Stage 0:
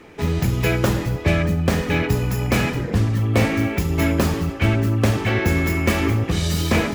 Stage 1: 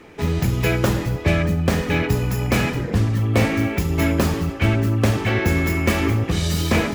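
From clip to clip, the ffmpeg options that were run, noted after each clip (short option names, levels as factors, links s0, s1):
-af anull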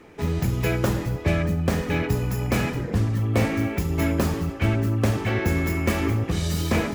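-af "equalizer=f=3200:t=o:w=1.7:g=-3,volume=0.668"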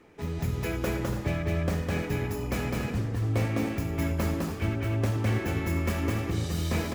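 -af "aecho=1:1:207|288.6:0.794|0.316,volume=0.398"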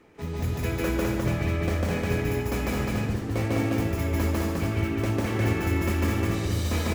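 -af "aecho=1:1:148.7|230.3:1|0.282"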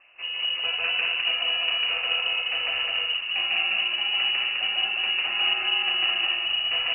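-af "lowpass=f=2600:t=q:w=0.5098,lowpass=f=2600:t=q:w=0.6013,lowpass=f=2600:t=q:w=0.9,lowpass=f=2600:t=q:w=2.563,afreqshift=-3000"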